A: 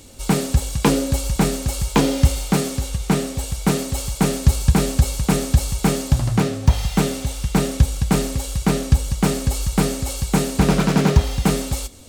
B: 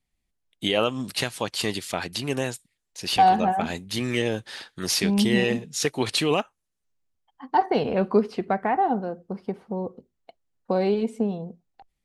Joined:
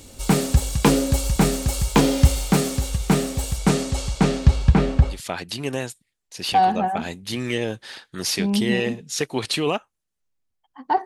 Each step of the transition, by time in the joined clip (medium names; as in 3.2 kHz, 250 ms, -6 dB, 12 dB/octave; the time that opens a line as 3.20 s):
A
3.58–5.21 s: low-pass 11 kHz -> 1.7 kHz
5.14 s: go over to B from 1.78 s, crossfade 0.14 s